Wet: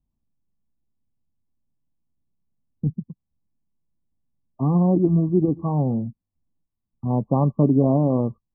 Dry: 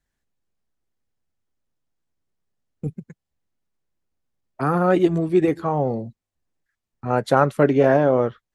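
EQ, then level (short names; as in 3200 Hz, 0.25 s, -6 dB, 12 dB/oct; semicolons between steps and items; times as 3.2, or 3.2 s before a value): brick-wall FIR low-pass 1200 Hz; resonant low shelf 320 Hz +9 dB, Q 1.5; -5.5 dB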